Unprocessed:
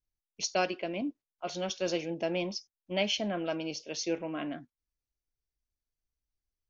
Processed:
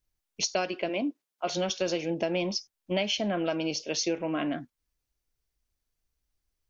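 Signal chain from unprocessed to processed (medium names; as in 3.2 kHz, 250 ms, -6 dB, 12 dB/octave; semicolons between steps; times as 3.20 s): 0.88–1.56 s: high-pass 320 Hz -> 140 Hz; compression 6:1, threshold -33 dBFS, peak gain reduction 10 dB; trim +8 dB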